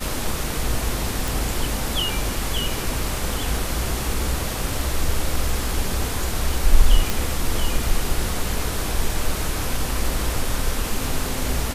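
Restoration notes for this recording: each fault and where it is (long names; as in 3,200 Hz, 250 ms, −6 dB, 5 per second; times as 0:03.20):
0:01.28: click
0:07.10: click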